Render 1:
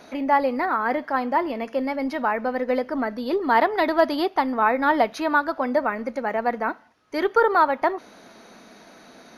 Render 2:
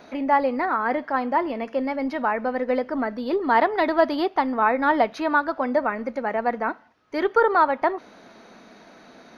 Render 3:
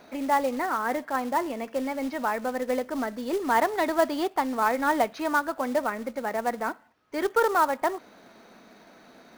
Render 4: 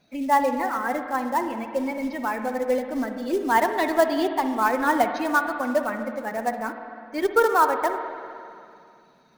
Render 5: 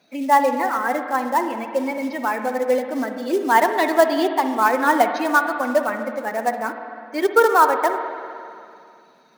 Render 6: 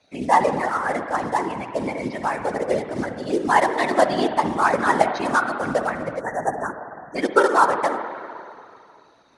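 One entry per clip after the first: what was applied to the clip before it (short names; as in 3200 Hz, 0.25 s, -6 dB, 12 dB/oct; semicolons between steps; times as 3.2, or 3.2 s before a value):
bell 11000 Hz -12 dB 1.3 oct
short-mantissa float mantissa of 2-bit; gain -4 dB
per-bin expansion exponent 1.5; reverb RT60 2.5 s, pre-delay 49 ms, DRR 6.5 dB; gain +5 dB
HPF 250 Hz 12 dB/oct; gain +4.5 dB
spectral delete 6.2–7.16, 1900–5600 Hz; whisperiser; elliptic low-pass 10000 Hz, stop band 60 dB; gain -1 dB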